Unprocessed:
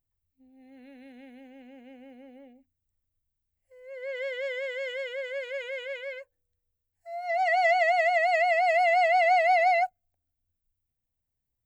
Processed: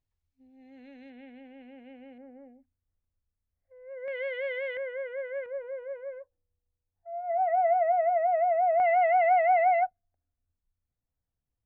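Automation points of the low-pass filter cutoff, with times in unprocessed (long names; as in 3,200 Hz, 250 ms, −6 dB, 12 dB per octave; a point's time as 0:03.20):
low-pass filter 24 dB per octave
6,400 Hz
from 0:01.10 3,600 Hz
from 0:02.18 1,700 Hz
from 0:04.08 2,900 Hz
from 0:04.77 1,700 Hz
from 0:05.46 1,200 Hz
from 0:08.80 1,800 Hz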